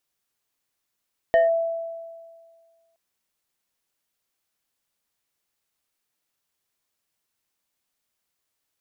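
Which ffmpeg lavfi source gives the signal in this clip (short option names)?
-f lavfi -i "aevalsrc='0.237*pow(10,-3*t/1.8)*sin(2*PI*664*t+0.53*clip(1-t/0.16,0,1)*sin(2*PI*1.77*664*t))':d=1.62:s=44100"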